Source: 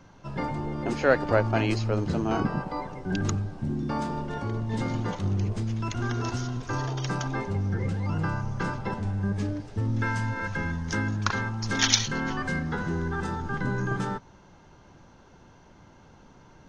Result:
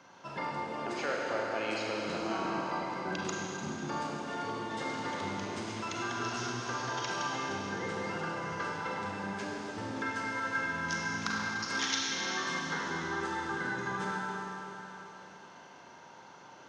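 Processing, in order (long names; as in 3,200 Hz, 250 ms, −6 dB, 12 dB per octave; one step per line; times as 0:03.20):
meter weighting curve A
downward compressor 3 to 1, threshold −37 dBFS, peak gain reduction 16.5 dB
four-comb reverb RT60 3.6 s, combs from 33 ms, DRR −3 dB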